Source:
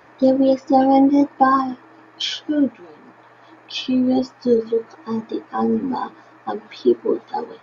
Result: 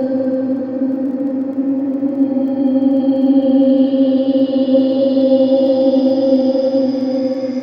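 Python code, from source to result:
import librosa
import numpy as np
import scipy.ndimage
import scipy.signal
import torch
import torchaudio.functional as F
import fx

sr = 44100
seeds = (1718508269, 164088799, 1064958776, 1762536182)

y = fx.chorus_voices(x, sr, voices=2, hz=0.4, base_ms=12, depth_ms=3.9, mix_pct=25)
y = fx.paulstretch(y, sr, seeds[0], factor=33.0, window_s=0.1, from_s=0.33)
y = fx.dmg_crackle(y, sr, seeds[1], per_s=13.0, level_db=-39.0)
y = y * 10.0 ** (3.0 / 20.0)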